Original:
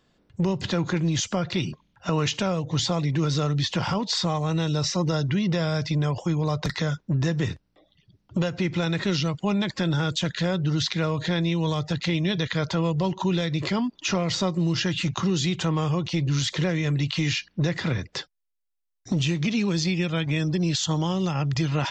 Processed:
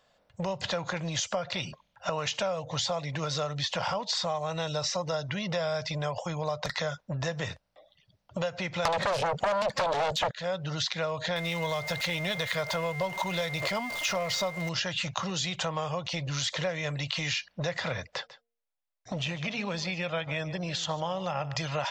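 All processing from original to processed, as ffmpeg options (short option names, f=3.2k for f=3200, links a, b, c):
-filter_complex "[0:a]asettb=1/sr,asplit=3[a][b][c];[a]atrim=end=8.854[d];[b]atrim=start=8.85:end=10.31,asetpts=PTS-STARTPTS,afade=t=in:d=0.004:c=qsin,afade=t=out:st=1.456:d=0.004:c=qsin,equalizer=f=200:t=o:w=1.5:g=13.5,acrossover=split=1000|2600[e][f][g];[e]acompressor=threshold=-19dB:ratio=4[h];[f]acompressor=threshold=-41dB:ratio=4[i];[g]acompressor=threshold=-43dB:ratio=4[j];[h][i][j]amix=inputs=3:normalize=0,aeval=exprs='0.316*sin(PI/2*6.31*val(0)/0.316)':c=same[k];[c]atrim=start=10.306[l];[d][k]acrossfade=d=0.004:c1=hsin:c2=qsin[m];[m][l]acrossfade=d=0.004:c1=qsin:c2=hsin,asettb=1/sr,asplit=3[n][o][p];[n]atrim=end=11.364[q];[o]atrim=start=11.36:end=14.69,asetpts=PTS-STARTPTS,afade=t=in:d=0.004:c=qsin,afade=t=out:st=3.326:d=0.004:c=qsin,aeval=exprs='val(0)+0.5*0.0251*sgn(val(0))':c=same,bandreject=f=820:w=20,aeval=exprs='val(0)+0.02*sin(2*PI*2100*n/s)':c=same[r];[p]atrim=start=14.686[s];[q][r]acrossfade=d=0.004:c1=hsin:c2=qsin[t];[t][s]acrossfade=d=0.004:c1=qsin:c2=hsin,asettb=1/sr,asplit=3[u][v][w];[u]atrim=end=18.144[x];[v]atrim=start=18.14:end=21.56,asetpts=PTS-STARTPTS,afade=t=in:d=0.004:c=qsin,afade=t=out:st=3.416:d=0.004:c=qsin,bass=f=250:g=-1,treble=f=4k:g=-10,bandreject=f=233:t=h:w=4,bandreject=f=466:t=h:w=4,bandreject=f=699:t=h:w=4,aecho=1:1:146:0.15,atrim=end_sample=150822[y];[w]atrim=start=21.556[z];[x][y]acrossfade=d=0.004:c1=hsin:c2=qsin[aa];[aa][z]acrossfade=d=0.004:c1=qsin:c2=hsin,lowshelf=f=450:t=q:w=3:g=-8.5,acompressor=threshold=-27dB:ratio=5"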